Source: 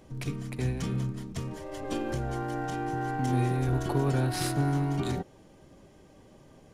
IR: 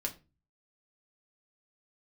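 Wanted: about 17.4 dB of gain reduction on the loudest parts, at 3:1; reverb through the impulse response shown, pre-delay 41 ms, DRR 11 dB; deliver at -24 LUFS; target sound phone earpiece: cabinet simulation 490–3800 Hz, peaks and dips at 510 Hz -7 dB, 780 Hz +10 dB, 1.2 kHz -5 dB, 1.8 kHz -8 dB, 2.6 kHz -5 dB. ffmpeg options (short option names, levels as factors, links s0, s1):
-filter_complex "[0:a]acompressor=threshold=0.00447:ratio=3,asplit=2[s0][s1];[1:a]atrim=start_sample=2205,adelay=41[s2];[s1][s2]afir=irnorm=-1:irlink=0,volume=0.237[s3];[s0][s3]amix=inputs=2:normalize=0,highpass=490,equalizer=f=510:t=q:w=4:g=-7,equalizer=f=780:t=q:w=4:g=10,equalizer=f=1200:t=q:w=4:g=-5,equalizer=f=1800:t=q:w=4:g=-8,equalizer=f=2600:t=q:w=4:g=-5,lowpass=f=3800:w=0.5412,lowpass=f=3800:w=1.3066,volume=11.9"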